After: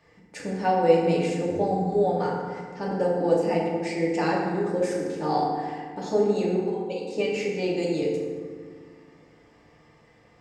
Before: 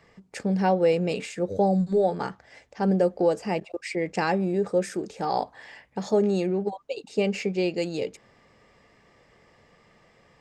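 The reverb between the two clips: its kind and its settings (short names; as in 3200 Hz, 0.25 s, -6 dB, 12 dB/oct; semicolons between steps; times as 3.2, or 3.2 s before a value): FDN reverb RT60 1.8 s, low-frequency decay 1.4×, high-frequency decay 0.5×, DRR -4.5 dB; gain -5 dB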